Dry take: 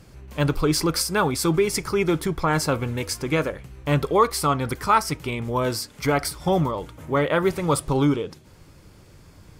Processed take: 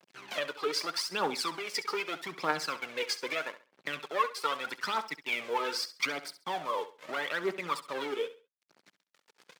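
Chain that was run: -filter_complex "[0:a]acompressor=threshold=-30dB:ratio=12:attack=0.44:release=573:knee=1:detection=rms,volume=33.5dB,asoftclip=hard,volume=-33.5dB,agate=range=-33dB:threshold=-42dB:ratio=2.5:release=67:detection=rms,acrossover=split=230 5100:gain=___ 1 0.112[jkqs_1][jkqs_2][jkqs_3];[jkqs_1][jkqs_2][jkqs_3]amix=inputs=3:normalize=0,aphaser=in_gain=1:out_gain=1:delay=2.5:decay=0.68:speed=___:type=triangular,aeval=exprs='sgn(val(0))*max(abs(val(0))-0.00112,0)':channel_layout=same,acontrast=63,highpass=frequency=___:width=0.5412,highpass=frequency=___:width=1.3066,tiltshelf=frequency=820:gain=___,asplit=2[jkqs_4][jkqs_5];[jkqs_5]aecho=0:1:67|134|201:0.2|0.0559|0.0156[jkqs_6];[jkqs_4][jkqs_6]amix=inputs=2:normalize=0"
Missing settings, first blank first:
0.178, 0.8, 170, 170, -6.5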